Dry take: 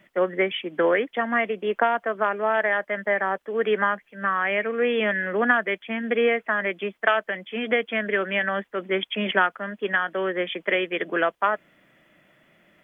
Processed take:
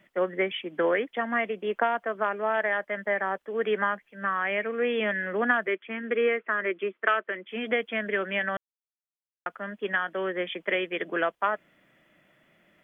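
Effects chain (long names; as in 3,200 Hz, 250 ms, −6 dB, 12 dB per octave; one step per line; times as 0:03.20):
0:05.67–0:07.49: loudspeaker in its box 240–3,100 Hz, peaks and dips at 370 Hz +8 dB, 760 Hz −10 dB, 1,300 Hz +4 dB
0:08.57–0:09.46: silence
level −4 dB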